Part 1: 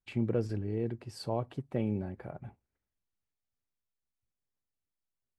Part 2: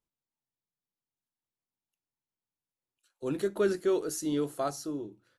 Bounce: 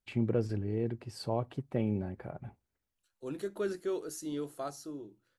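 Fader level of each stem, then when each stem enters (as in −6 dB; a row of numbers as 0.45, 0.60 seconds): +0.5, −7.0 decibels; 0.00, 0.00 seconds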